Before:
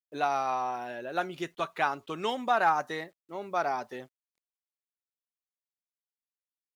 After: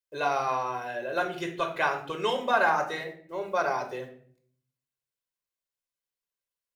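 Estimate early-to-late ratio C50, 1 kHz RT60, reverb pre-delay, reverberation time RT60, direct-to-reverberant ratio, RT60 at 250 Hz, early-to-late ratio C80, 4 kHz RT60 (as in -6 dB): 9.5 dB, 0.45 s, 3 ms, 0.55 s, 3.5 dB, 0.85 s, 13.5 dB, 0.40 s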